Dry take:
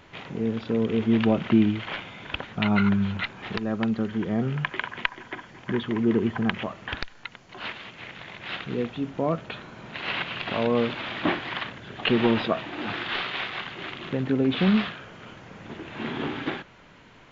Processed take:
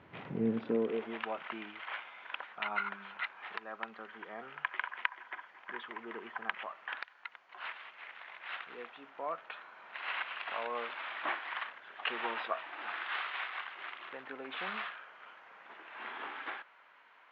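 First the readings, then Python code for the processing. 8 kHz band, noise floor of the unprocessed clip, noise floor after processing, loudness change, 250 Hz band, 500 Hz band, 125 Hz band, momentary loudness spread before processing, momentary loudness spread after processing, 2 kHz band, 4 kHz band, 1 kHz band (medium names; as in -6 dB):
no reading, -52 dBFS, -61 dBFS, -13.0 dB, -19.0 dB, -12.5 dB, under -20 dB, 17 LU, 13 LU, -6.5 dB, -12.5 dB, -6.0 dB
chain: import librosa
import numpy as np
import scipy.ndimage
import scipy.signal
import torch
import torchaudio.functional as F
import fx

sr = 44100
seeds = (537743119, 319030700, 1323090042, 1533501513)

y = scipy.signal.sosfilt(scipy.signal.butter(2, 2200.0, 'lowpass', fs=sr, output='sos'), x)
y = fx.hum_notches(y, sr, base_hz=50, count=2)
y = fx.filter_sweep_highpass(y, sr, from_hz=100.0, to_hz=1000.0, start_s=0.31, end_s=1.25, q=1.0)
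y = y * 10.0 ** (-5.5 / 20.0)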